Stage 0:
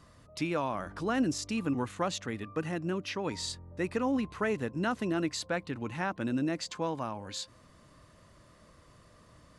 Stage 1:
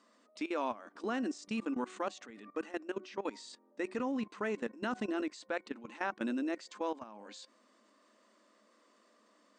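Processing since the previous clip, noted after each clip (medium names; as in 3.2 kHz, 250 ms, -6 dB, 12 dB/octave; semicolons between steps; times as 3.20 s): de-hum 371.1 Hz, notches 6; FFT band-pass 200–9100 Hz; level held to a coarse grid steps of 17 dB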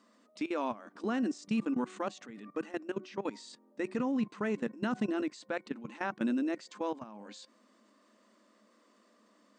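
peaking EQ 150 Hz +12.5 dB 1.1 oct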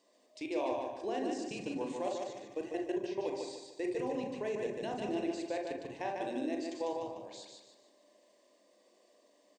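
static phaser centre 550 Hz, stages 4; feedback delay 148 ms, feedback 39%, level -4 dB; on a send at -3 dB: reverberation RT60 0.30 s, pre-delay 34 ms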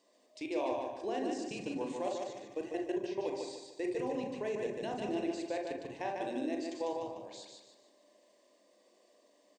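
no audible change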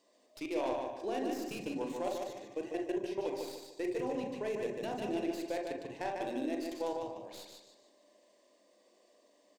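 tracing distortion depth 0.072 ms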